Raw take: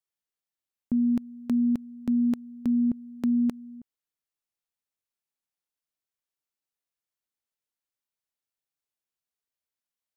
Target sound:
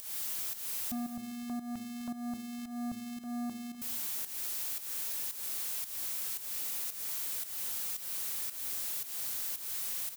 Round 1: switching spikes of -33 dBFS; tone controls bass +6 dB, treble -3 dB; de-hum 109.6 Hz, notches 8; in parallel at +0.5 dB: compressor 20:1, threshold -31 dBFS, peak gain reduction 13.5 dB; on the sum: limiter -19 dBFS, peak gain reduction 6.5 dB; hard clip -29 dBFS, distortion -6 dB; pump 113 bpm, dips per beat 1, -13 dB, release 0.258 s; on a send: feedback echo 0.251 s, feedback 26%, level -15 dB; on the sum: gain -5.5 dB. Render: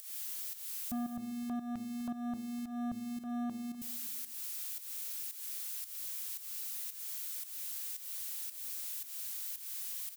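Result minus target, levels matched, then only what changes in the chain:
switching spikes: distortion -11 dB; compressor: peak gain reduction -5.5 dB
change: switching spikes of -22 dBFS; change: compressor 20:1, threshold -37 dBFS, peak gain reduction 19 dB

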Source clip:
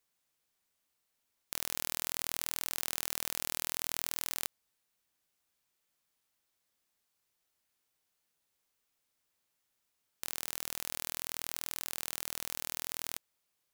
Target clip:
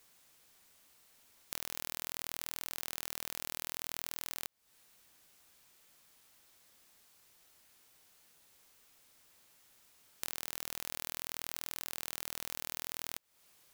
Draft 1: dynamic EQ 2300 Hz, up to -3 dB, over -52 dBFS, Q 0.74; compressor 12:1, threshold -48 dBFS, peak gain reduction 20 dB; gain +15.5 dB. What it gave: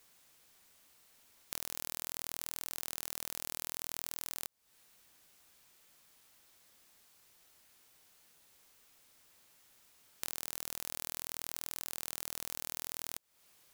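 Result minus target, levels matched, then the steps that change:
2000 Hz band -3.0 dB
change: dynamic EQ 9000 Hz, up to -3 dB, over -52 dBFS, Q 0.74

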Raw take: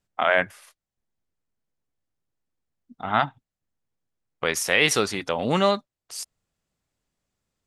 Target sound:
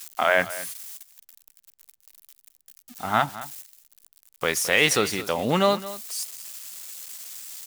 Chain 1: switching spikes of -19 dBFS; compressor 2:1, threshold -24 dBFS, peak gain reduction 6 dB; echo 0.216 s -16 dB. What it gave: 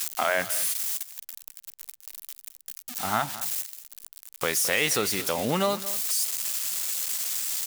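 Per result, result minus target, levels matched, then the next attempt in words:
switching spikes: distortion +11 dB; compressor: peak gain reduction +6 dB
switching spikes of -30 dBFS; compressor 2:1, threshold -24 dBFS, peak gain reduction 6 dB; echo 0.216 s -16 dB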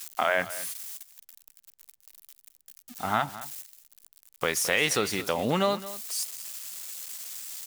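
compressor: peak gain reduction +6 dB
switching spikes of -30 dBFS; echo 0.216 s -16 dB

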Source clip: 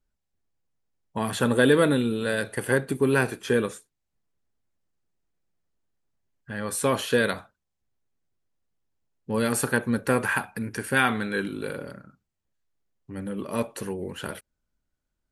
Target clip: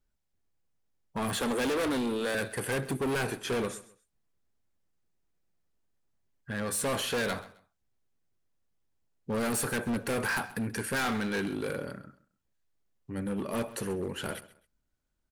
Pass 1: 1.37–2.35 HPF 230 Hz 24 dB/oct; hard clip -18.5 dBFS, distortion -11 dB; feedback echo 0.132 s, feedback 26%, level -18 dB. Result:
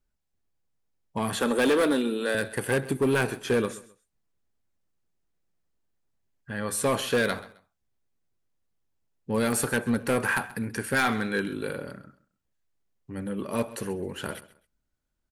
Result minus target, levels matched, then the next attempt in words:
hard clip: distortion -7 dB
1.37–2.35 HPF 230 Hz 24 dB/oct; hard clip -27.5 dBFS, distortion -4 dB; feedback echo 0.132 s, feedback 26%, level -18 dB

